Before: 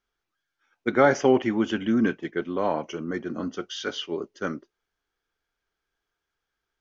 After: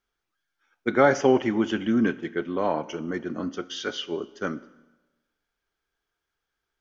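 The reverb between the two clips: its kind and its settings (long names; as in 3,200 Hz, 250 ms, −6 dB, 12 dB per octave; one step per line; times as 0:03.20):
four-comb reverb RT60 1.1 s, combs from 26 ms, DRR 16.5 dB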